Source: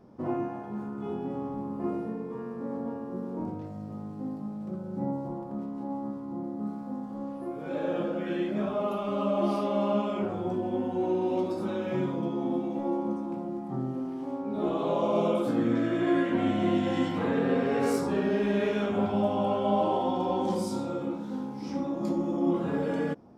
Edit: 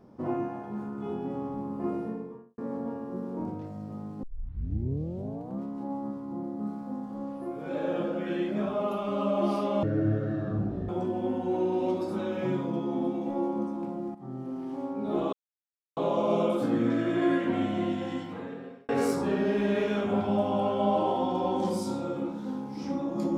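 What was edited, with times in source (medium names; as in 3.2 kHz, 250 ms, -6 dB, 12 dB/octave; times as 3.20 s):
2.07–2.58 s: studio fade out
4.23 s: tape start 1.40 s
9.83–10.38 s: speed 52%
13.64–14.18 s: fade in, from -13.5 dB
14.82 s: insert silence 0.64 s
16.18–17.74 s: fade out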